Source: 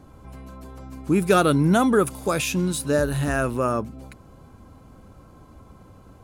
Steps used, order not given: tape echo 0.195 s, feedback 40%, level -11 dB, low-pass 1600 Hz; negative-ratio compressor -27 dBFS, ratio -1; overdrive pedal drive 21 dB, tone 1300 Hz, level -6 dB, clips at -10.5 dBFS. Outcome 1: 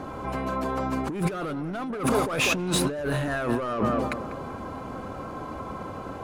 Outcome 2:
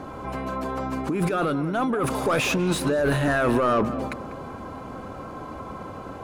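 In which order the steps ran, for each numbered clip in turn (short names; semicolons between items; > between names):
overdrive pedal > tape echo > negative-ratio compressor; negative-ratio compressor > overdrive pedal > tape echo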